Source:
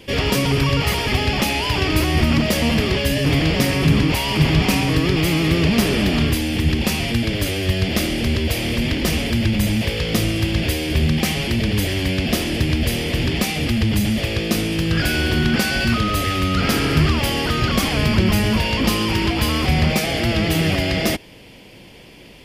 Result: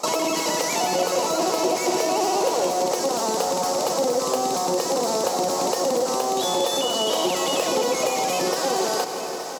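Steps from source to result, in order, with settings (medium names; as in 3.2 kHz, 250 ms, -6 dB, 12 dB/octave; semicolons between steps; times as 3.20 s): speed mistake 33 rpm record played at 78 rpm; Chebyshev high-pass 500 Hz, order 2; treble shelf 8.3 kHz -11.5 dB; delay 875 ms -19.5 dB; on a send at -11.5 dB: reverberation RT60 1.5 s, pre-delay 78 ms; on the sum: compression 3:1, threshold -30 dBFS, peak gain reduction 12 dB; peaking EQ 1.6 kHz -11 dB 0.63 oct; bit-crushed delay 167 ms, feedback 80%, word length 9-bit, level -12.5 dB; trim +8 dB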